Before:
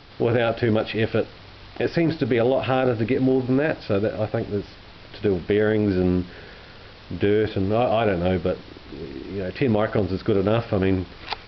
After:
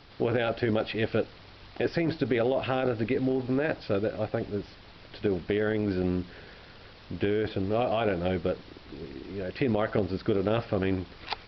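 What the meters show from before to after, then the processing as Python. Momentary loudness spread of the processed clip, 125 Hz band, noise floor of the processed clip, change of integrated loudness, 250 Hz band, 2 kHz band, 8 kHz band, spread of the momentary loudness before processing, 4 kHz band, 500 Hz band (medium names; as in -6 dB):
15 LU, -7.5 dB, -51 dBFS, -6.5 dB, -6.5 dB, -5.0 dB, no reading, 14 LU, -5.0 dB, -6.0 dB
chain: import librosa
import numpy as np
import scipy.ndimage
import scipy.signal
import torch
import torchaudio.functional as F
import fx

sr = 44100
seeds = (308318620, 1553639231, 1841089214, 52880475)

y = fx.hpss(x, sr, part='percussive', gain_db=4)
y = F.gain(torch.from_numpy(y), -8.0).numpy()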